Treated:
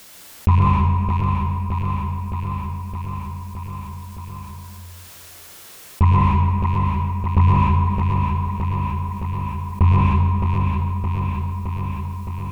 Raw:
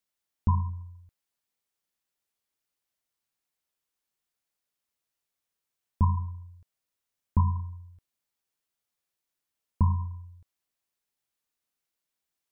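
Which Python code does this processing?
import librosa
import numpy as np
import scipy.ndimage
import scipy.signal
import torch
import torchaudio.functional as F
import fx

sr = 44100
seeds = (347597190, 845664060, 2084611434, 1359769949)

p1 = fx.rattle_buzz(x, sr, strikes_db=-25.0, level_db=-33.0)
p2 = fx.fold_sine(p1, sr, drive_db=6, ceiling_db=-12.5)
p3 = p1 + (p2 * librosa.db_to_amplitude(-12.0))
p4 = fx.echo_feedback(p3, sr, ms=616, feedback_pct=53, wet_db=-9)
p5 = fx.rev_plate(p4, sr, seeds[0], rt60_s=1.4, hf_ratio=0.7, predelay_ms=100, drr_db=-3.0)
p6 = fx.env_flatten(p5, sr, amount_pct=50)
y = p6 * librosa.db_to_amplitude(4.5)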